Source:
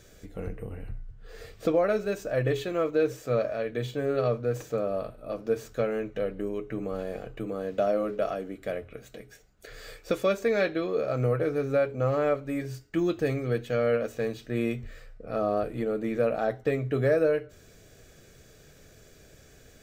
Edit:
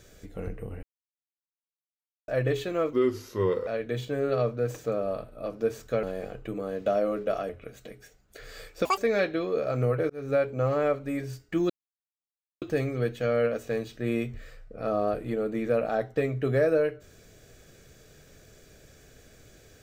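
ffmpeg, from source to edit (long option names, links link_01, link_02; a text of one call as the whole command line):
ffmpeg -i in.wav -filter_complex "[0:a]asplit=11[link_01][link_02][link_03][link_04][link_05][link_06][link_07][link_08][link_09][link_10][link_11];[link_01]atrim=end=0.83,asetpts=PTS-STARTPTS,afade=type=out:start_time=0.826:duration=0.004:curve=hsin[link_12];[link_02]atrim=start=0.83:end=2.28,asetpts=PTS-STARTPTS,volume=0[link_13];[link_03]atrim=start=2.28:end=2.934,asetpts=PTS-STARTPTS,afade=type=in:duration=0.004:curve=hsin[link_14];[link_04]atrim=start=2.93:end=3.53,asetpts=PTS-STARTPTS,asetrate=35721,aresample=44100[link_15];[link_05]atrim=start=3.526:end=5.892[link_16];[link_06]atrim=start=6.948:end=8.412[link_17];[link_07]atrim=start=8.778:end=10.144[link_18];[link_08]atrim=start=10.14:end=10.39,asetpts=PTS-STARTPTS,asetrate=87318,aresample=44100,atrim=end_sample=5568,asetpts=PTS-STARTPTS[link_19];[link_09]atrim=start=10.386:end=11.51,asetpts=PTS-STARTPTS,afade=type=out:start_time=1.12:duration=0.004:curve=hsin[link_20];[link_10]atrim=start=11.51:end=13.11,asetpts=PTS-STARTPTS,afade=type=in:duration=0.25,afade=type=out:start_time=1.596:duration=0.004:curve=hsin,apad=pad_dur=0.92[link_21];[link_11]atrim=start=13.11,asetpts=PTS-STARTPTS,afade=type=in:duration=0.004:curve=hsin[link_22];[link_12][link_13][link_14]concat=n=3:v=0:a=1[link_23];[link_23][link_15]acrossfade=duration=0.004:curve1=hsin:curve2=hsin[link_24];[link_24][link_16]acrossfade=duration=0.004:curve1=hsin:curve2=hsin[link_25];[link_25][link_17]acrossfade=duration=0.004:curve1=hsin:curve2=hsin[link_26];[link_26][link_18]acrossfade=duration=0.004:curve1=hsin:curve2=hsin[link_27];[link_27][link_19]acrossfade=duration=0.004:curve1=hsin:curve2=hsin[link_28];[link_20][link_21][link_22]concat=n=3:v=0:a=1[link_29];[link_28][link_29]acrossfade=duration=0.004:curve1=hsin:curve2=hsin" out.wav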